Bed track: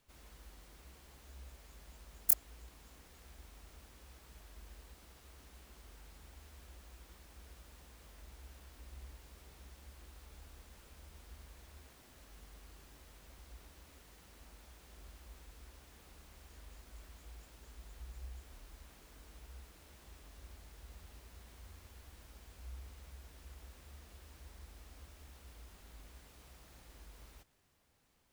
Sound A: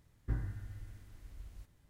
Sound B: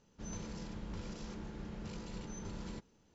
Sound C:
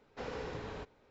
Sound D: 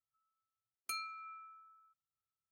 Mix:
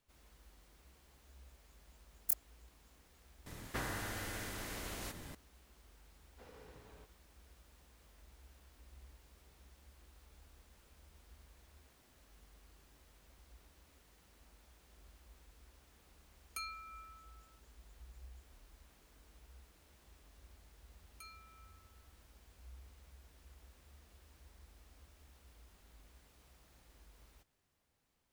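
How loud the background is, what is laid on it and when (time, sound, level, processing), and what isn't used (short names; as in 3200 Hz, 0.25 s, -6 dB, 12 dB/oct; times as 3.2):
bed track -6.5 dB
3.46 add A -2.5 dB + spectral compressor 4:1
6.21 add C -17 dB
15.67 add D -2.5 dB
20.31 add D -13.5 dB
not used: B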